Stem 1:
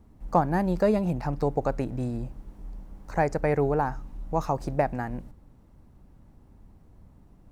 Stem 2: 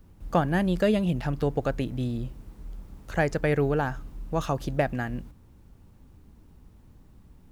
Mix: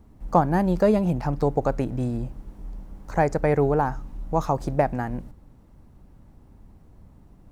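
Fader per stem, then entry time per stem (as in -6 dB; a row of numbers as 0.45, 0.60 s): +3.0, -17.0 dB; 0.00, 0.00 s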